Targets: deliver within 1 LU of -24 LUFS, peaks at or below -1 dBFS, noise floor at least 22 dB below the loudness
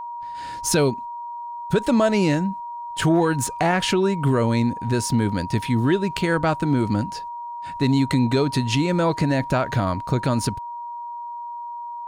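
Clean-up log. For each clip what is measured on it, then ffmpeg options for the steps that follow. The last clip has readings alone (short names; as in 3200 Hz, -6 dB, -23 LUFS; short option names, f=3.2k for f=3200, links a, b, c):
steady tone 950 Hz; tone level -30 dBFS; loudness -21.5 LUFS; peak -8.5 dBFS; loudness target -24.0 LUFS
-> -af "bandreject=f=950:w=30"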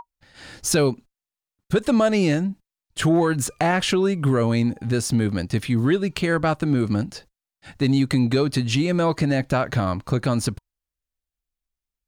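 steady tone none; loudness -22.0 LUFS; peak -9.0 dBFS; loudness target -24.0 LUFS
-> -af "volume=-2dB"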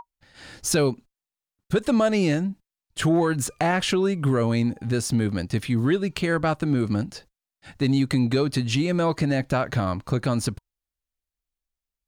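loudness -24.0 LUFS; peak -11.0 dBFS; noise floor -91 dBFS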